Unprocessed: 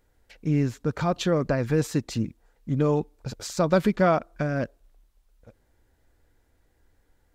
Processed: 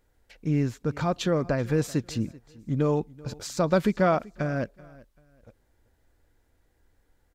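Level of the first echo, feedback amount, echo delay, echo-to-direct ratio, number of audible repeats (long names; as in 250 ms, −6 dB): −22.0 dB, 28%, 385 ms, −21.5 dB, 2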